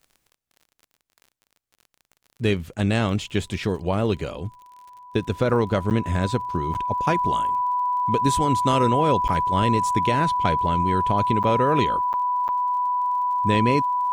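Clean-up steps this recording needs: de-click; band-stop 990 Hz, Q 30; interpolate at 1.76/5.90/6.74/9.28/11.43/12.13/12.48 s, 9 ms

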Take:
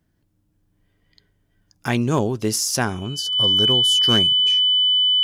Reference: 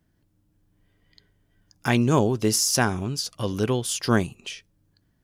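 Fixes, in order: clip repair -9.5 dBFS; band-stop 3 kHz, Q 30

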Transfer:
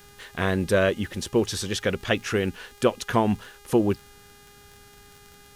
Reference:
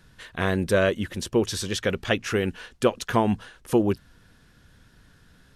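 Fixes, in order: de-click; de-hum 407.6 Hz, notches 38

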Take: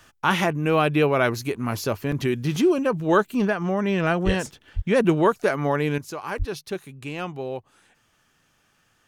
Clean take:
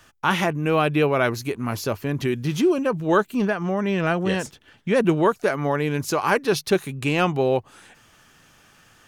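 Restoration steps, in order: 4.25–4.37 s: high-pass 140 Hz 24 dB/octave; 4.75–4.87 s: high-pass 140 Hz 24 dB/octave; 6.38–6.50 s: high-pass 140 Hz 24 dB/octave; interpolate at 2.12/2.56/6.38/6.70 s, 2.5 ms; 5.98 s: gain correction +10.5 dB

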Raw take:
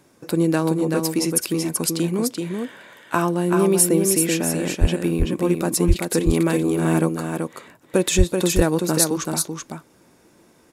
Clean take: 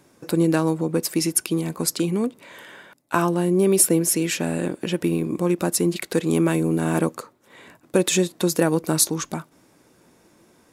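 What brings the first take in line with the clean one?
de-plosive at 4.80/5.87/8.17 s; inverse comb 382 ms -4.5 dB

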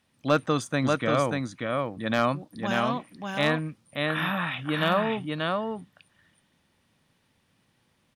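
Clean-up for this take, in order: clip repair -11 dBFS; inverse comb 586 ms -3.5 dB

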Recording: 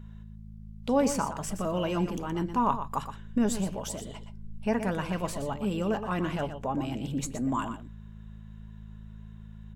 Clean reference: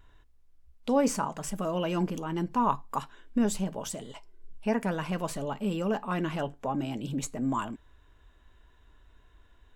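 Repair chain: de-hum 53.5 Hz, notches 4; inverse comb 120 ms -10 dB

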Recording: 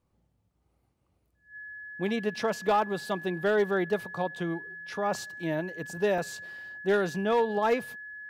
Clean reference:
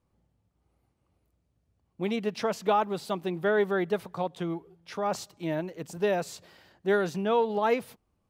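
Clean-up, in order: clip repair -18 dBFS; band-stop 1.7 kHz, Q 30; interpolate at 6.18 s, 3 ms

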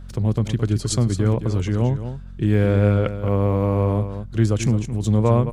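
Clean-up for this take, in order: de-hum 45.1 Hz, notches 5; expander -25 dBFS, range -21 dB; inverse comb 218 ms -10.5 dB

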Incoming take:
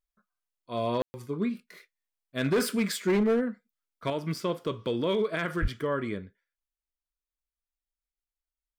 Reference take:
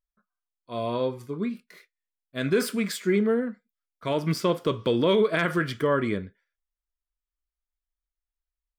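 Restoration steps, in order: clip repair -20 dBFS; 5.61–5.73 s: high-pass 140 Hz 24 dB/octave; room tone fill 1.02–1.14 s; trim 0 dB, from 4.10 s +6 dB

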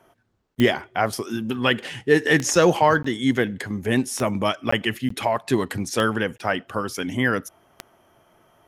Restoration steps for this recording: de-click; interpolate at 0.55/3.03/4.71/5.09/6.38 s, 14 ms

